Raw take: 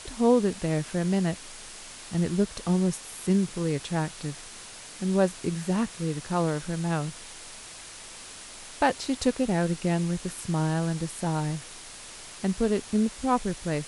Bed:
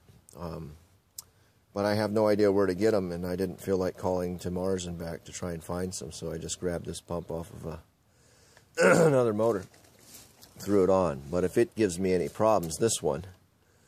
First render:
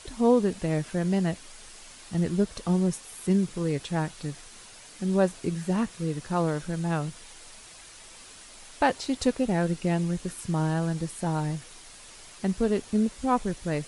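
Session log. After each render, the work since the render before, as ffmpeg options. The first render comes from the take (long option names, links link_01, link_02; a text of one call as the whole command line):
ffmpeg -i in.wav -af "afftdn=noise_reduction=6:noise_floor=-44" out.wav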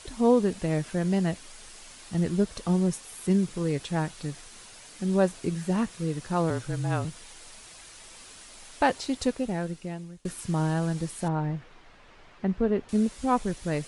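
ffmpeg -i in.wav -filter_complex "[0:a]asettb=1/sr,asplit=3[link_01][link_02][link_03];[link_01]atrim=end=6.504[link_04];[link_02]atrim=start=6.5:end=7.05,asetpts=PTS-STARTPTS,afade=type=in:duration=0.004:curve=qsin,afade=type=out:start_time=0.546:duration=0.004:curve=qsin,afreqshift=-31[link_05];[link_03]atrim=start=7.046[link_06];[link_04][link_05]acrossfade=duration=0.004:curve1=hsin:curve2=qsin[link_07];[link_07][link_06]acrossfade=duration=0.004:curve1=qsin:curve2=hsin,asettb=1/sr,asplit=3[link_08][link_09][link_10];[link_08]atrim=end=11.284[link_11];[link_09]atrim=start=11.28:end=12.89,asetpts=PTS-STARTPTS,afade=type=in:duration=0.004:curve=qsin,afade=type=out:start_time=1.606:duration=0.004:curve=qsin,lowpass=2100[link_12];[link_10]atrim=start=12.886[link_13];[link_11][link_12]acrossfade=duration=0.004:curve1=hsin:curve2=qsin[link_14];[link_14][link_13]acrossfade=duration=0.004:curve1=qsin:curve2=hsin,asplit=2[link_15][link_16];[link_15]atrim=end=10.25,asetpts=PTS-STARTPTS,afade=type=out:start_time=8.98:duration=1.27:silence=0.0707946[link_17];[link_16]atrim=start=10.25,asetpts=PTS-STARTPTS,afade=type=in:duration=0.004:curve=hsin:silence=0.0707946[link_18];[link_17][link_18]concat=n=2:v=0:a=1" out.wav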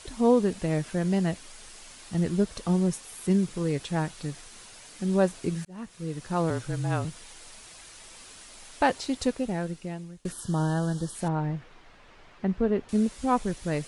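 ffmpeg -i in.wav -filter_complex "[0:a]asettb=1/sr,asplit=3[link_01][link_02][link_03];[link_01]atrim=end=10.324[link_04];[link_02]atrim=start=10.32:end=11.15,asetpts=PTS-STARTPTS,afade=type=in:duration=0.004:curve=qsin,afade=type=out:start_time=0.826:duration=0.004:curve=qsin,asuperstop=centerf=2300:order=12:qfactor=2.1[link_05];[link_03]atrim=start=11.146[link_06];[link_04][link_05]acrossfade=duration=0.004:curve1=hsin:curve2=qsin[link_07];[link_07][link_06]acrossfade=duration=0.004:curve1=qsin:curve2=hsin,asplit=2[link_08][link_09];[link_08]atrim=end=5.65,asetpts=PTS-STARTPTS,afade=type=out:start_time=5.646:duration=0.004:curve=hsin[link_10];[link_09]atrim=start=5.65,asetpts=PTS-STARTPTS,afade=type=in:duration=0.99:curve=qsin[link_11];[link_10][link_11]concat=n=2:v=0:a=1" out.wav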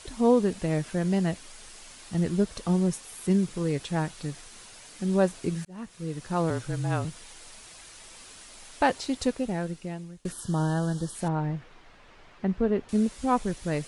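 ffmpeg -i in.wav -af anull out.wav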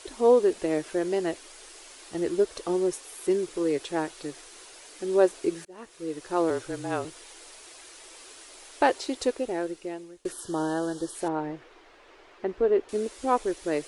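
ffmpeg -i in.wav -af "lowshelf=frequency=260:width_type=q:width=3:gain=-10" out.wav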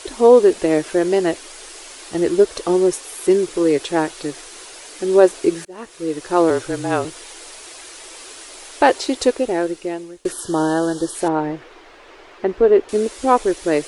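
ffmpeg -i in.wav -af "volume=10dB,alimiter=limit=-1dB:level=0:latency=1" out.wav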